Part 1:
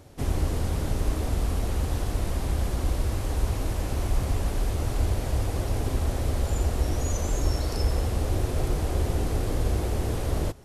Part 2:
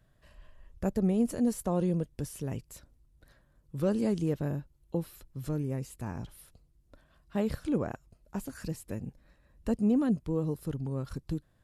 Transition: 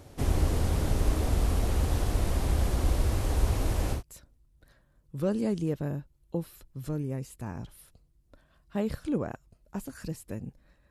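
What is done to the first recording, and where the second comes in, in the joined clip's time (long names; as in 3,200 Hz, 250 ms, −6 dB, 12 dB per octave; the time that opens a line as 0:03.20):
part 1
0:03.97: continue with part 2 from 0:02.57, crossfade 0.12 s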